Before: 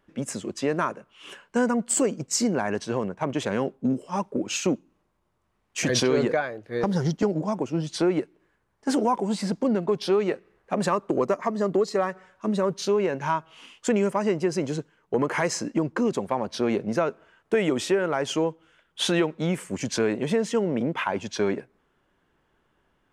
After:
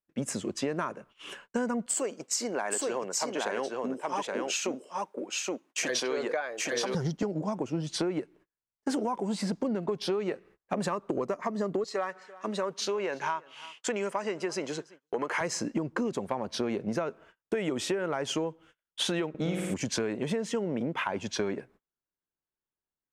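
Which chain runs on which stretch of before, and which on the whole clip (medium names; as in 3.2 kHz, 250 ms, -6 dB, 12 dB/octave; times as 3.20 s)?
1.86–6.95 s: high-pass 440 Hz + delay 822 ms -3.5 dB
11.84–15.41 s: frequency weighting A + delay 338 ms -23.5 dB
19.29–19.74 s: peaking EQ 920 Hz -5.5 dB 0.21 oct + flutter echo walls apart 9.1 m, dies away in 1 s + tape noise reduction on one side only decoder only
whole clip: gate -51 dBFS, range -31 dB; compression, threshold -27 dBFS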